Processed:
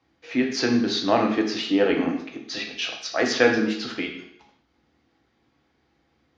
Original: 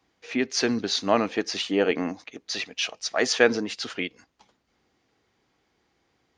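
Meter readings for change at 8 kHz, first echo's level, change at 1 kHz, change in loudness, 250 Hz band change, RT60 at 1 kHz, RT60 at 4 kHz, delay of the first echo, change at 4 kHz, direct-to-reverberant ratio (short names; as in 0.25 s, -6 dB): -4.5 dB, none, +2.5 dB, +2.0 dB, +5.0 dB, 0.70 s, 0.70 s, none, 0.0 dB, 1.5 dB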